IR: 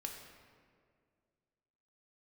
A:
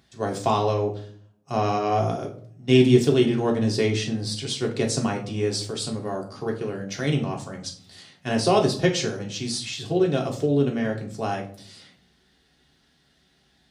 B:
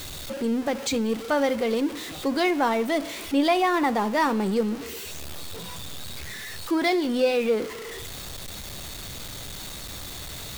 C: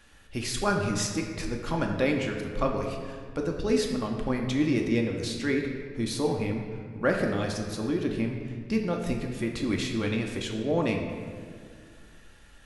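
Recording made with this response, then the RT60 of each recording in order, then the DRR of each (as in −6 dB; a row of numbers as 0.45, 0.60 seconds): C; 0.50, 1.0, 2.1 seconds; 0.0, 14.5, 1.5 decibels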